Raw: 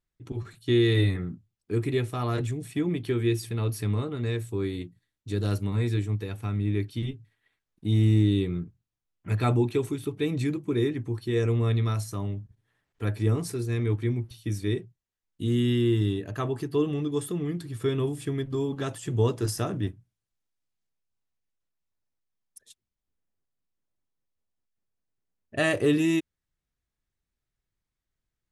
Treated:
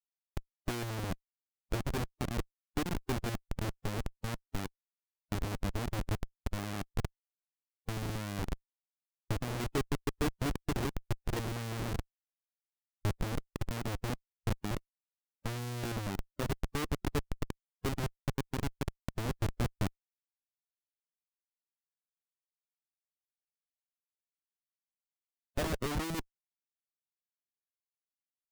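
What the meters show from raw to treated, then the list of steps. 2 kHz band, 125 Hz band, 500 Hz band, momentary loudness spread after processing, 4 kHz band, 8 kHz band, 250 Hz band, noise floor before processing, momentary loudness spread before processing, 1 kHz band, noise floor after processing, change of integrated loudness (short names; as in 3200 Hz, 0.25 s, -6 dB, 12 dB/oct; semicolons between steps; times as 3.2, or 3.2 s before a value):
-6.5 dB, -11.5 dB, -12.0 dB, 7 LU, -6.5 dB, -3.5 dB, -11.5 dB, under -85 dBFS, 11 LU, -2.5 dB, under -85 dBFS, -10.5 dB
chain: treble ducked by the level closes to 980 Hz, closed at -19.5 dBFS; Schmitt trigger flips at -23.5 dBFS; harmonic-percussive split harmonic -10 dB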